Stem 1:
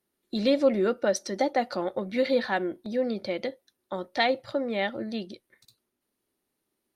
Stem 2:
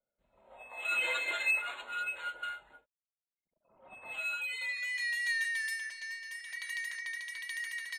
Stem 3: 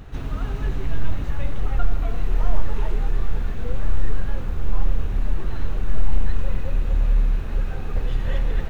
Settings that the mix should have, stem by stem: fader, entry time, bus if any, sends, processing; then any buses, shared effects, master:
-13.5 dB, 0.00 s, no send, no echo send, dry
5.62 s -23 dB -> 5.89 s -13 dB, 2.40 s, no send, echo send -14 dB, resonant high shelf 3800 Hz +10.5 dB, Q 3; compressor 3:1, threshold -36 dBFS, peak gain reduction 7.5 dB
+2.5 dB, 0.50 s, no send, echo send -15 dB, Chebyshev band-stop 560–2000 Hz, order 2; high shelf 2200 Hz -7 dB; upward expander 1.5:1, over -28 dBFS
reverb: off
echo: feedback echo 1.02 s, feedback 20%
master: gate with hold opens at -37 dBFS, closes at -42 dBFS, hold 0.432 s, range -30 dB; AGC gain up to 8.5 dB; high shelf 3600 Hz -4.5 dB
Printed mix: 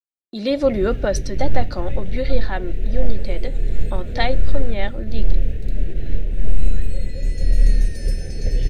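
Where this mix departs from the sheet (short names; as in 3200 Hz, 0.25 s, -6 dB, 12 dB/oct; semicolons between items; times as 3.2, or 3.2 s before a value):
stem 1 -13.5 dB -> -3.0 dB; master: missing high shelf 3600 Hz -4.5 dB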